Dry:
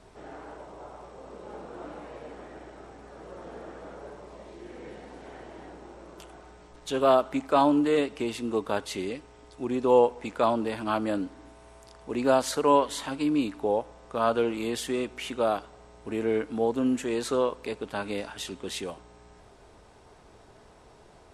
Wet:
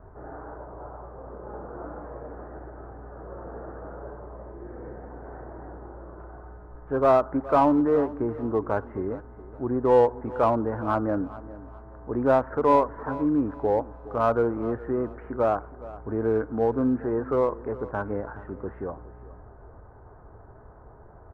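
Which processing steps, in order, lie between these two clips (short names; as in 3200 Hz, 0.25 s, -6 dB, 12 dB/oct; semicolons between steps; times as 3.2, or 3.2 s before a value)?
steep low-pass 1600 Hz 48 dB/oct; resonant low shelf 140 Hz +6 dB, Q 1.5; in parallel at -7 dB: hard clip -21.5 dBFS, distortion -9 dB; on the sum: feedback echo 0.417 s, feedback 30%, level -17.5 dB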